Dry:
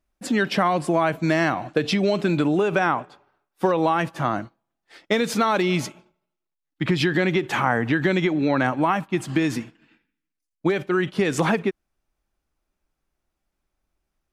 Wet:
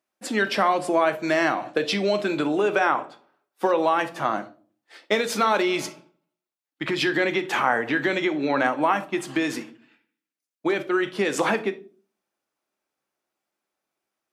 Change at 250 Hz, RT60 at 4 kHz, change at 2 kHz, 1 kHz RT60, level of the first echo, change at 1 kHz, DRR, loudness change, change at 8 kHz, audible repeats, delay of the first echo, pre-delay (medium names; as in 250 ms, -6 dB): -4.0 dB, 0.30 s, +0.5 dB, 0.35 s, no echo, +0.5 dB, 9.0 dB, -1.0 dB, +0.5 dB, no echo, no echo, 8 ms